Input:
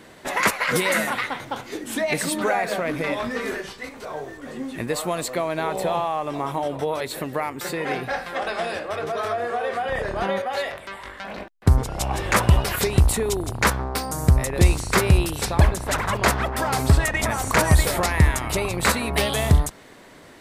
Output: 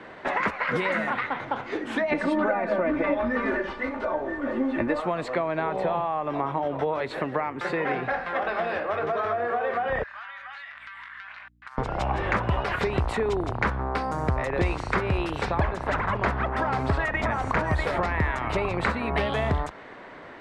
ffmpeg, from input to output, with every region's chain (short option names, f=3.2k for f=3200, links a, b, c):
-filter_complex "[0:a]asettb=1/sr,asplit=3[a][b][c];[a]atrim=end=2.114[d];[b]atrim=start=2.11:end=5,asetpts=PTS-STARTPTS,afade=t=in:d=0.004:c=qsin,afade=t=out:st=2.886:d=0.004:c=qsin,tiltshelf=f=1.5k:g=4.5,aecho=1:1:3.4:0.74,atrim=end_sample=127449[e];[c]atrim=start=4.996[f];[d][e]acrossfade=d=0.004:c1=hsin:c2=qsin[g];[g][f]acrossfade=d=0.004:c1=qsin:c2=hsin,asettb=1/sr,asplit=3[h][i][j];[h]atrim=end=10.034[k];[i]atrim=start=10.03:end=11.78,asetpts=PTS-STARTPTS,afade=t=in:d=0.004:c=qsin,afade=t=out:st=1.746:d=0.004:c=qsin,highpass=f=1.3k:w=0.5412,highpass=f=1.3k:w=1.3066,aeval=exprs='val(0)+0.001*(sin(2*PI*60*n/s)+sin(2*PI*2*60*n/s)/2+sin(2*PI*3*60*n/s)/3+sin(2*PI*4*60*n/s)/4+sin(2*PI*5*60*n/s)/5)':c=same,acompressor=threshold=-41dB:ratio=8:attack=3.2:release=140:knee=1:detection=peak[l];[j]atrim=start=11.776[m];[k][l]acrossfade=d=0.004:c1=hsin:c2=qsin[n];[n][m]acrossfade=d=0.004:c1=qsin:c2=hsin,lowpass=1.8k,lowshelf=f=450:g=-11,acrossover=split=80|310[o][p][q];[o]acompressor=threshold=-37dB:ratio=4[r];[p]acompressor=threshold=-38dB:ratio=4[s];[q]acompressor=threshold=-34dB:ratio=4[t];[r][s][t]amix=inputs=3:normalize=0,volume=8.5dB"